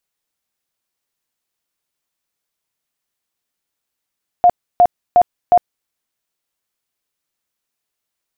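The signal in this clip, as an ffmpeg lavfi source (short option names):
-f lavfi -i "aevalsrc='0.531*sin(2*PI*709*mod(t,0.36))*lt(mod(t,0.36),40/709)':d=1.44:s=44100"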